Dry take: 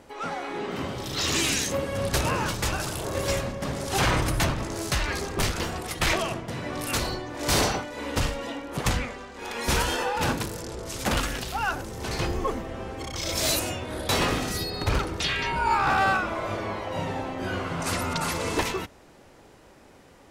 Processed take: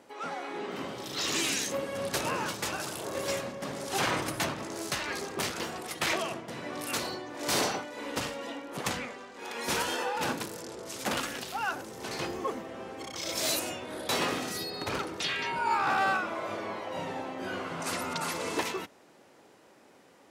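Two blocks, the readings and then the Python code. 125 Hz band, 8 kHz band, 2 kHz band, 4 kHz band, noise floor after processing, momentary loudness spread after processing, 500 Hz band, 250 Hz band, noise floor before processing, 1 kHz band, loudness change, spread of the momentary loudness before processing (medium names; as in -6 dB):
-14.0 dB, -4.5 dB, -4.5 dB, -4.5 dB, -58 dBFS, 10 LU, -4.5 dB, -6.0 dB, -52 dBFS, -4.5 dB, -5.0 dB, 9 LU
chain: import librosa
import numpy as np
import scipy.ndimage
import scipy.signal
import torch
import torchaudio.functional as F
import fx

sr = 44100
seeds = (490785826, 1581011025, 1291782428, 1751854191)

y = scipy.signal.sosfilt(scipy.signal.butter(2, 200.0, 'highpass', fs=sr, output='sos'), x)
y = F.gain(torch.from_numpy(y), -4.5).numpy()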